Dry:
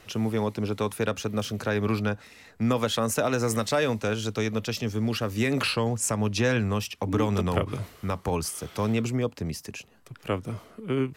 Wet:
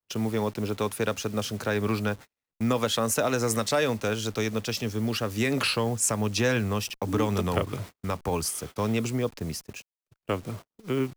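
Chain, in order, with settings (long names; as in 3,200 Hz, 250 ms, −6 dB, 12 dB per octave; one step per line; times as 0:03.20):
hold until the input has moved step −44.5 dBFS
noise gate −38 dBFS, range −42 dB
bass and treble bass −2 dB, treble +3 dB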